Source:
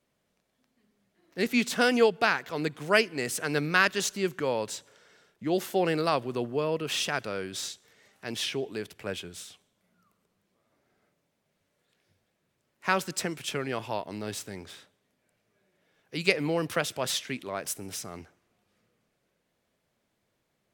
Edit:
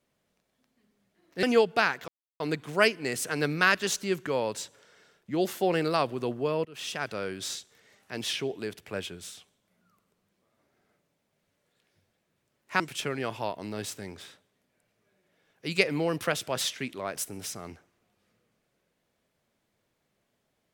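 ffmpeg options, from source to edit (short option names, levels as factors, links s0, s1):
-filter_complex "[0:a]asplit=5[s0][s1][s2][s3][s4];[s0]atrim=end=1.432[s5];[s1]atrim=start=1.878:end=2.53,asetpts=PTS-STARTPTS,afade=t=out:st=0.648:d=0.004:c=hsin,apad=pad_dur=0.32[s6];[s2]atrim=start=2.53:end=6.78,asetpts=PTS-STARTPTS,afade=t=in:d=0.004:c=hsin,afade=t=out:st=4.246:d=0.004:c=hsin:silence=0.0841395[s7];[s3]atrim=start=6.78:end=12.932,asetpts=PTS-STARTPTS,afade=t=in:d=0.52:silence=0.0841395[s8];[s4]atrim=start=13.288[s9];[s6][s7][s8]concat=n=3:v=0:a=1[s10];[s5][s10]acrossfade=d=0.004:c1=hsin:c2=hsin[s11];[s11][s9]acrossfade=d=0.004:c1=hsin:c2=hsin"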